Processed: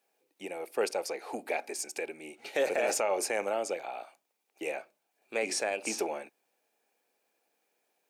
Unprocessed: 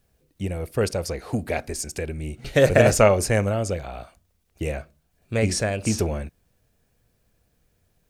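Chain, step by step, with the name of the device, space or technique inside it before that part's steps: laptop speaker (HPF 320 Hz 24 dB/oct; bell 830 Hz +10.5 dB 0.26 oct; bell 2400 Hz +7 dB 0.25 oct; limiter -13.5 dBFS, peak gain reduction 12 dB); gain -6 dB

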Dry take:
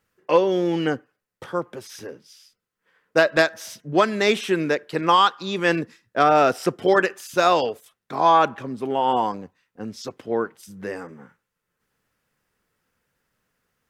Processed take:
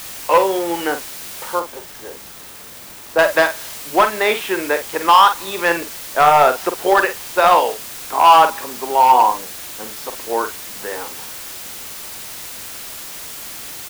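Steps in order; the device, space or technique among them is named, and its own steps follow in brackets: drive-through speaker (BPF 470–3200 Hz; bell 920 Hz +8 dB 0.41 oct; hard clip -11 dBFS, distortion -12 dB; white noise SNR 14 dB); 1.59–3.19 de-esser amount 65%; doubler 47 ms -9 dB; gain +5 dB

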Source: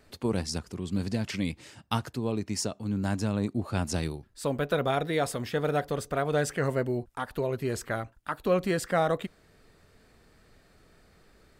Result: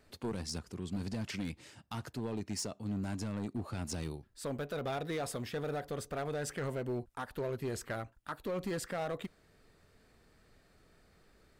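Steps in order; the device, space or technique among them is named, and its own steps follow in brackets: limiter into clipper (limiter -20 dBFS, peak gain reduction 7.5 dB; hard clip -25.5 dBFS, distortion -14 dB); gain -5.5 dB

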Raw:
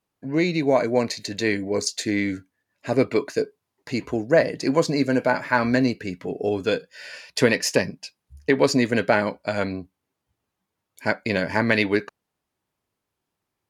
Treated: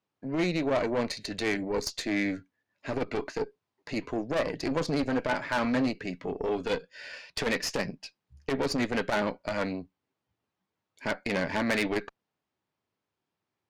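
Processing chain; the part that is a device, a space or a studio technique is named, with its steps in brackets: valve radio (BPF 90–5200 Hz; tube stage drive 21 dB, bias 0.65; core saturation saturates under 150 Hz)

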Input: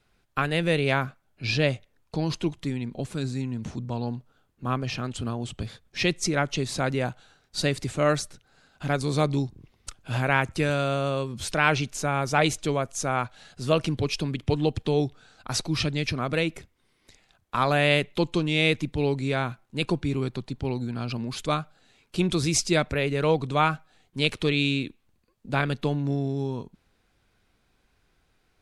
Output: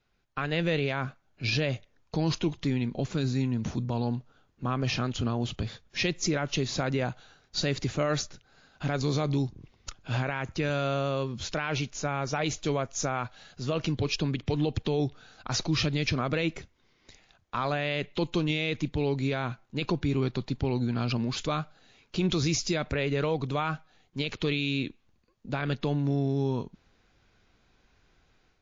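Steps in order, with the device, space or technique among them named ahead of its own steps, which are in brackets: low-bitrate web radio (AGC gain up to 9 dB; limiter -11.5 dBFS, peak gain reduction 10 dB; gain -6 dB; MP3 40 kbps 16000 Hz)

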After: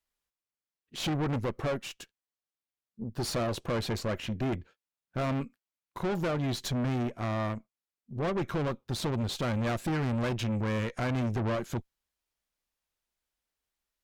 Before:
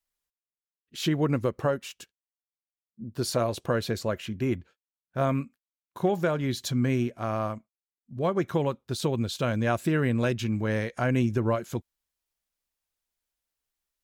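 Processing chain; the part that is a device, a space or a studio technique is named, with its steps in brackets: tube preamp driven hard (tube stage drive 32 dB, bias 0.65; high shelf 6000 Hz -6.5 dB); gain +5 dB

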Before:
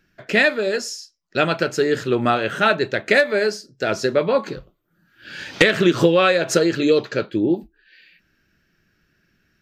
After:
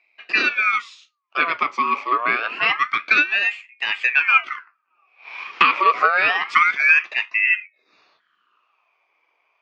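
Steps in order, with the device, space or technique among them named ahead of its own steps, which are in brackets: voice changer toy (ring modulator with a swept carrier 1500 Hz, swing 55%, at 0.27 Hz; speaker cabinet 440–4400 Hz, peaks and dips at 530 Hz -7 dB, 830 Hz -6 dB, 1200 Hz +9 dB, 2400 Hz +9 dB, 3900 Hz -8 dB); gain -1 dB

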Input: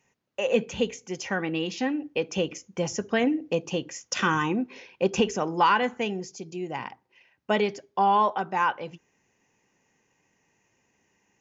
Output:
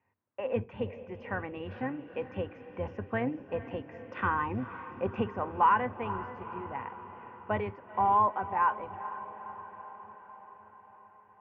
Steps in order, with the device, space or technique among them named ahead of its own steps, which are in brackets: dynamic EQ 320 Hz, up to -7 dB, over -45 dBFS, Q 6.8; diffused feedback echo 0.46 s, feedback 63%, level -13.5 dB; sub-octave bass pedal (octaver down 1 oct, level -6 dB; speaker cabinet 79–2100 Hz, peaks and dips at 95 Hz +10 dB, 160 Hz -10 dB, 420 Hz -3 dB, 1000 Hz +6 dB); gain -6.5 dB

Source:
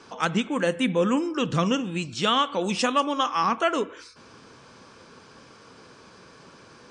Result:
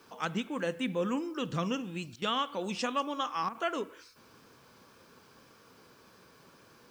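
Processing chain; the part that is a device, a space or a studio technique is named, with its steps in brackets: worn cassette (LPF 8300 Hz; wow and flutter 26 cents; level dips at 2.16/3.49, 58 ms -10 dB; white noise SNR 34 dB); gain -9 dB

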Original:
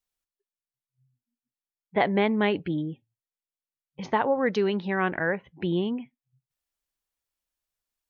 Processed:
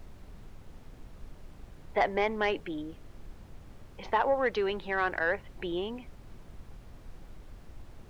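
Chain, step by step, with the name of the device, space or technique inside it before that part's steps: aircraft cabin announcement (BPF 450–3800 Hz; soft clip -15.5 dBFS, distortion -18 dB; brown noise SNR 11 dB)

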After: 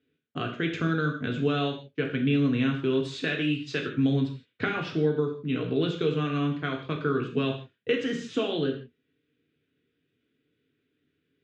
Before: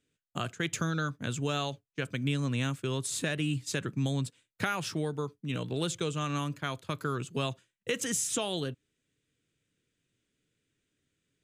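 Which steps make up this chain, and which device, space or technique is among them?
3–3.98 tilt +2 dB/oct; guitar cabinet (speaker cabinet 87–3800 Hz, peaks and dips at 260 Hz +8 dB, 420 Hz +8 dB, 900 Hz -7 dB, 1500 Hz +3 dB); non-linear reverb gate 0.19 s falling, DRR 1 dB

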